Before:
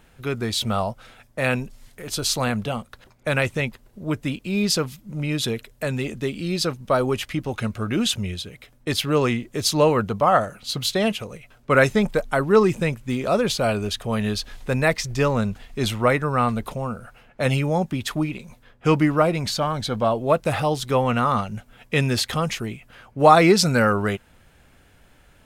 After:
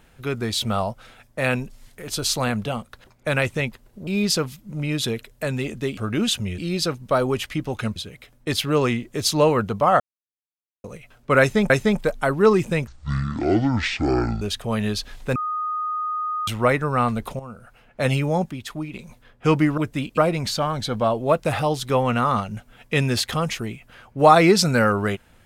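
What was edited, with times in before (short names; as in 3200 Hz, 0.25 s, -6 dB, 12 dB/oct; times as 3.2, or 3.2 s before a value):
4.07–4.47 move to 19.18
7.75–8.36 move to 6.37
10.4–11.24 mute
11.8–12.1 loop, 2 plays
12.97–13.82 speed 55%
14.76–15.88 bleep 1240 Hz -23 dBFS
16.8–17.42 fade in, from -12.5 dB
17.92–18.34 gain -6.5 dB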